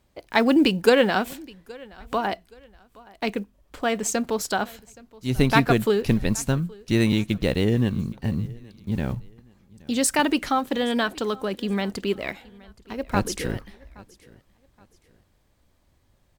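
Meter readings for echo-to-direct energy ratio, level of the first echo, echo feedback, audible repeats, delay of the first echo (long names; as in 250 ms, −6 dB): −23.0 dB, −23.5 dB, 33%, 2, 822 ms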